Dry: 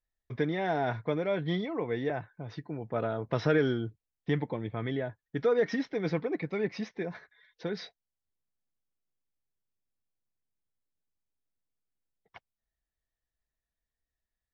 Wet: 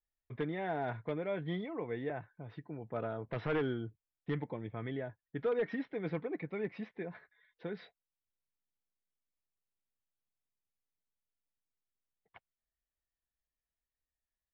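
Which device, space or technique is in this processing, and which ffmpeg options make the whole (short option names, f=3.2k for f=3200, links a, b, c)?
synthesiser wavefolder: -af "aeval=exprs='0.112*(abs(mod(val(0)/0.112+3,4)-2)-1)':c=same,lowpass=f=3.3k:w=0.5412,lowpass=f=3.3k:w=1.3066,volume=-6.5dB"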